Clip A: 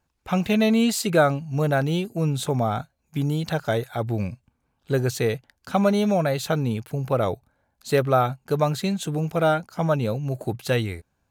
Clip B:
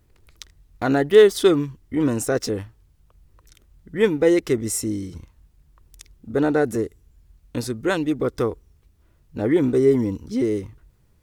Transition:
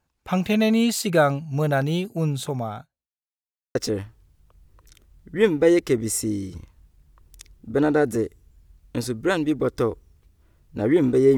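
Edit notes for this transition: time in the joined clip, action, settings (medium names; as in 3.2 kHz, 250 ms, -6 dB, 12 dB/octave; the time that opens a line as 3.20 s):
clip A
2.23–3.08 s: fade out linear
3.08–3.75 s: mute
3.75 s: go over to clip B from 2.35 s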